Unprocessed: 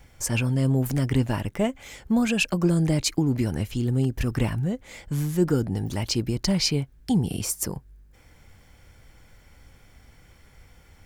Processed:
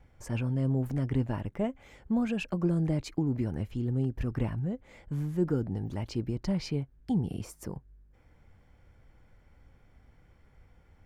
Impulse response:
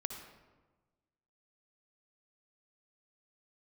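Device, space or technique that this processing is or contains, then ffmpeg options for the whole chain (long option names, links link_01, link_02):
through cloth: -af "highshelf=frequency=2900:gain=-17,volume=-6dB"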